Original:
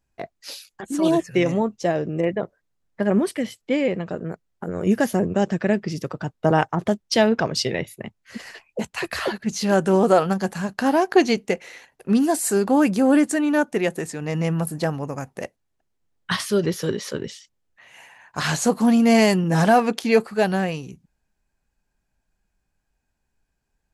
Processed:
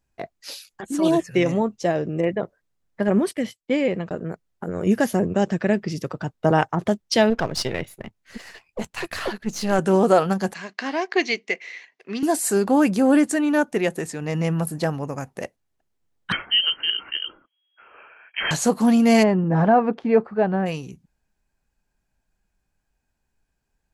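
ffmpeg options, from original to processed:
ffmpeg -i in.wav -filter_complex "[0:a]asettb=1/sr,asplit=3[link_01][link_02][link_03];[link_01]atrim=end=3.084[link_04];[link_02]atrim=start=3.08:end=4.2,asetpts=PTS-STARTPTS,afade=type=in:duration=0.004:curve=qsin,afade=type=out:start_time=1.116:duration=0.004:curve=qsin,agate=range=-19dB:threshold=-38dB:ratio=16:release=100:detection=peak[link_05];[link_03]atrim=start=4.196[link_06];[link_04][link_05]acrossfade=duration=0.004:curve1=hsin:curve2=qsin[link_07];[link_07][link_06]acrossfade=duration=0.004:curve1=qsin:curve2=hsin,asettb=1/sr,asplit=3[link_08][link_09][link_10];[link_08]atrim=end=7.304[link_11];[link_09]atrim=start=7.3:end=9.79,asetpts=PTS-STARTPTS,afade=type=in:duration=0.004:curve=qsin,afade=type=out:start_time=2.486:duration=0.004:curve=qsin,aeval=exprs='if(lt(val(0),0),0.447*val(0),val(0))':channel_layout=same[link_12];[link_10]atrim=start=9.786[link_13];[link_11][link_12]acrossfade=duration=0.004:curve1=hsin:curve2=qsin[link_14];[link_14][link_13]acrossfade=duration=0.004:curve1=qsin:curve2=hsin,asettb=1/sr,asplit=3[link_15][link_16][link_17];[link_15]atrim=end=10.544[link_18];[link_16]atrim=start=10.54:end=12.23,asetpts=PTS-STARTPTS,afade=type=in:duration=0.004:curve=qsin,afade=type=out:start_time=1.686:duration=0.004:curve=qsin,highpass=450,equalizer=frequency=540:width_type=q:width=4:gain=-9,equalizer=frequency=840:width_type=q:width=4:gain=-10,equalizer=frequency=1400:width_type=q:width=4:gain=-7,equalizer=frequency=2100:width_type=q:width=4:gain=8,lowpass=frequency=5900:width=0.5412,lowpass=frequency=5900:width=1.3066[link_19];[link_17]atrim=start=12.226[link_20];[link_18][link_19]acrossfade=duration=0.004:curve1=hsin:curve2=qsin[link_21];[link_21][link_20]acrossfade=duration=0.004:curve1=qsin:curve2=hsin,asettb=1/sr,asplit=3[link_22][link_23][link_24];[link_22]atrim=end=16.324[link_25];[link_23]atrim=start=16.32:end=18.51,asetpts=PTS-STARTPTS,afade=type=in:duration=0.004:curve=qsin,afade=type=out:start_time=2.186:duration=0.004:curve=qsin,lowpass=frequency=2800:width_type=q:width=0.5098,lowpass=frequency=2800:width_type=q:width=0.6013,lowpass=frequency=2800:width_type=q:width=0.9,lowpass=frequency=2800:width_type=q:width=2.563,afreqshift=-3300[link_26];[link_24]atrim=start=18.506[link_27];[link_25][link_26]acrossfade=duration=0.004:curve1=hsin:curve2=qsin[link_28];[link_28][link_27]acrossfade=duration=0.004:curve1=qsin:curve2=hsin,asplit=3[link_29][link_30][link_31];[link_29]afade=type=out:start_time=19.22:duration=0.02[link_32];[link_30]lowpass=1300,afade=type=in:start_time=19.22:duration=0.02,afade=type=out:start_time=20.65:duration=0.02[link_33];[link_31]afade=type=in:start_time=20.65:duration=0.02[link_34];[link_32][link_33][link_34]amix=inputs=3:normalize=0" out.wav

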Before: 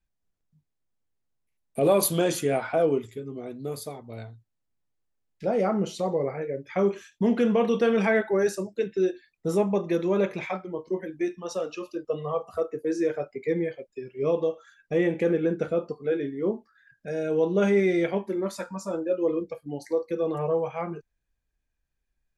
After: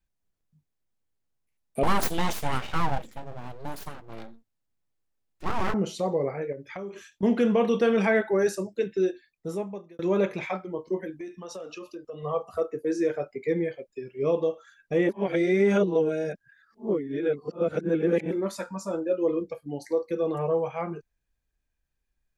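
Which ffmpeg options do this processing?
ffmpeg -i in.wav -filter_complex "[0:a]asettb=1/sr,asplit=3[link_01][link_02][link_03];[link_01]atrim=end=1.834[link_04];[link_02]atrim=start=1.83:end=5.74,asetpts=PTS-STARTPTS,afade=type=in:duration=0.004:curve=qsin,afade=type=out:start_time=3.906:duration=0.004:curve=qsin,aeval=exprs='abs(val(0))':channel_layout=same[link_05];[link_03]atrim=start=5.736[link_06];[link_04][link_05]acrossfade=duration=0.004:curve1=hsin:curve2=qsin[link_07];[link_07][link_06]acrossfade=duration=0.004:curve1=qsin:curve2=hsin,asettb=1/sr,asplit=3[link_08][link_09][link_10];[link_08]atrim=end=6.524[link_11];[link_09]atrim=start=6.52:end=7.23,asetpts=PTS-STARTPTS,afade=type=in:duration=0.004:curve=qsin,afade=type=out:start_time=0.706:duration=0.004:curve=qsin,acompressor=threshold=-34dB:ratio=5:attack=3.2:release=140:knee=1:detection=peak[link_12];[link_10]atrim=start=7.226[link_13];[link_11][link_12]acrossfade=duration=0.004:curve1=hsin:curve2=qsin[link_14];[link_14][link_13]acrossfade=duration=0.004:curve1=qsin:curve2=hsin,asettb=1/sr,asplit=3[link_15][link_16][link_17];[link_15]atrim=end=11.144[link_18];[link_16]atrim=start=11.14:end=12.23,asetpts=PTS-STARTPTS,afade=type=in:duration=0.004:curve=qsin,afade=type=out:start_time=1.086:duration=0.004:curve=qsin,acompressor=threshold=-36dB:ratio=4:attack=3.2:release=140:knee=1:detection=peak[link_19];[link_17]atrim=start=12.226[link_20];[link_18][link_19]acrossfade=duration=0.004:curve1=hsin:curve2=qsin[link_21];[link_21][link_20]acrossfade=duration=0.004:curve1=qsin:curve2=hsin,asplit=4[link_22][link_23][link_24][link_25];[link_22]atrim=end=9.99,asetpts=PTS-STARTPTS,afade=type=out:start_time=8.97:duration=1.02[link_26];[link_23]atrim=start=9.99:end=15.092,asetpts=PTS-STARTPTS,afade=type=in:duration=0.004:curve=hsin[link_27];[link_24]atrim=start=15.088:end=18.312,asetpts=PTS-STARTPTS,areverse[link_28];[link_25]atrim=start=18.308[link_29];[link_26][link_27]concat=n=2:v=0:a=1[link_30];[link_30][link_28]acrossfade=duration=0.004:curve1=hsin:curve2=hsin[link_31];[link_31][link_29]acrossfade=duration=0.004:curve1=hsin:curve2=hsin" out.wav

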